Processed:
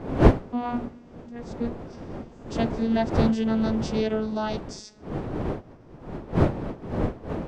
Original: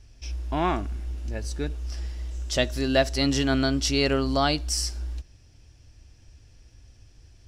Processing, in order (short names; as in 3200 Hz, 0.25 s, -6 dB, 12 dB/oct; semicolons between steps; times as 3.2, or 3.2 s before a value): vocoder on a gliding note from B3, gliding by -4 st; wind noise 400 Hz -27 dBFS; gain -1 dB